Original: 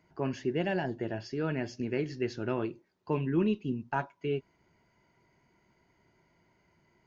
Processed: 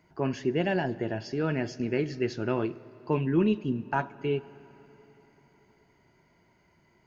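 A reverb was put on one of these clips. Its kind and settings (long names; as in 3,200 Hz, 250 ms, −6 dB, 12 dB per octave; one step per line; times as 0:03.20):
comb and all-pass reverb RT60 4 s, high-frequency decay 0.7×, pre-delay 5 ms, DRR 18.5 dB
level +3.5 dB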